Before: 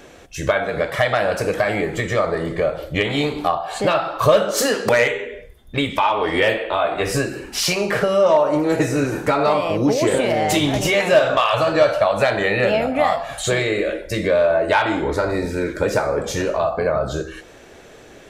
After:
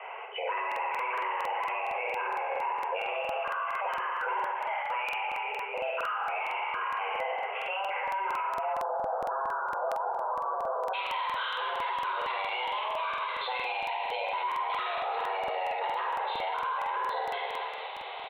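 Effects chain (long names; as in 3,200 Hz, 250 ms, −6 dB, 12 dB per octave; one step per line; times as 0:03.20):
bit-depth reduction 8 bits, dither none
spectral tilt +1.5 dB per octave
hard clipping −17 dBFS, distortion −9 dB
notch filter 1,400 Hz, Q 6.6
reverse bouncing-ball delay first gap 50 ms, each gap 1.5×, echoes 5
speech leveller within 4 dB 0.5 s
Butterworth low-pass 2,500 Hz 96 dB per octave, from 0:08.72 1,200 Hz, from 0:10.93 3,500 Hz
flutter between parallel walls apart 7.4 metres, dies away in 0.2 s
brickwall limiter −24 dBFS, peak gain reduction 16 dB
frequency shifter +380 Hz
low shelf with overshoot 260 Hz −7 dB, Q 1.5
regular buffer underruns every 0.23 s, samples 2,048, repeat, from 0:00.67
level −1.5 dB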